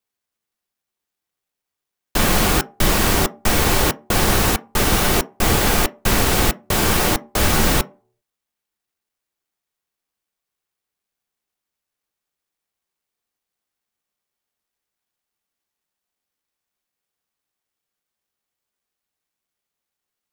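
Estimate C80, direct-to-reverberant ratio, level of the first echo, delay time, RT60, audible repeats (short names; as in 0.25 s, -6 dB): 28.0 dB, 10.0 dB, none, none, 0.45 s, none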